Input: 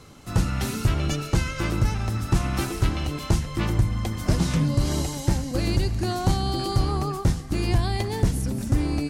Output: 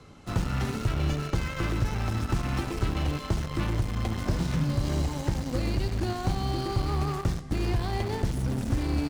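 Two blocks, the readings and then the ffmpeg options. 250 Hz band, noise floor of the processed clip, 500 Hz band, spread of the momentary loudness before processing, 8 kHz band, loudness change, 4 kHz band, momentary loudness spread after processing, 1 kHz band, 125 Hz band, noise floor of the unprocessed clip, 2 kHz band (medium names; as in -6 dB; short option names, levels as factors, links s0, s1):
-4.0 dB, -38 dBFS, -3.5 dB, 3 LU, -8.5 dB, -4.0 dB, -5.5 dB, 2 LU, -3.5 dB, -4.5 dB, -36 dBFS, -3.5 dB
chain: -filter_complex "[0:a]acrossover=split=110|2400[s0][s1][s2];[s0]acompressor=threshold=0.0355:ratio=4[s3];[s1]acompressor=threshold=0.0282:ratio=4[s4];[s2]acompressor=threshold=0.00891:ratio=4[s5];[s3][s4][s5]amix=inputs=3:normalize=0,lowpass=12000,aecho=1:1:69|138|207|276:0.282|0.121|0.0521|0.0224,asplit=2[s6][s7];[s7]acrusher=bits=4:mix=0:aa=0.000001,volume=0.562[s8];[s6][s8]amix=inputs=2:normalize=0,highshelf=f=5500:g=-11,volume=0.75"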